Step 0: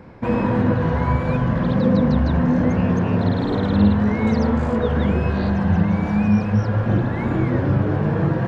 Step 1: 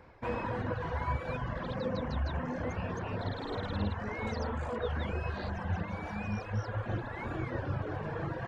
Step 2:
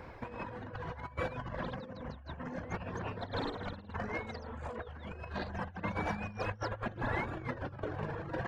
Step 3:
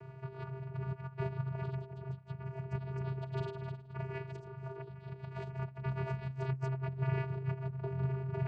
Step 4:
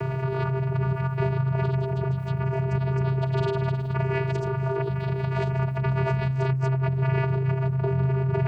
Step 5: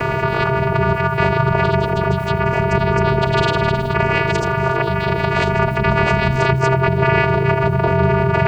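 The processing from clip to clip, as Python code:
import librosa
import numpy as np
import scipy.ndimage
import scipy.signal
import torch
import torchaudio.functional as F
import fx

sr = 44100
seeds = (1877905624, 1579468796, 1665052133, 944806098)

y1 = fx.dereverb_blind(x, sr, rt60_s=0.83)
y1 = fx.peak_eq(y1, sr, hz=200.0, db=-13.0, octaves=1.7)
y1 = y1 * librosa.db_to_amplitude(-7.5)
y2 = fx.over_compress(y1, sr, threshold_db=-40.0, ratio=-0.5)
y2 = y2 * librosa.db_to_amplitude(1.5)
y3 = fx.vocoder(y2, sr, bands=8, carrier='square', carrier_hz=132.0)
y3 = y3 * librosa.db_to_amplitude(2.5)
y4 = fx.env_flatten(y3, sr, amount_pct=70)
y4 = y4 * librosa.db_to_amplitude(8.5)
y5 = fx.spec_clip(y4, sr, under_db=18)
y5 = y5 + 10.0 ** (-21.5 / 20.0) * np.pad(y5, (int(82 * sr / 1000.0), 0))[:len(y5)]
y5 = y5 * librosa.db_to_amplitude(8.5)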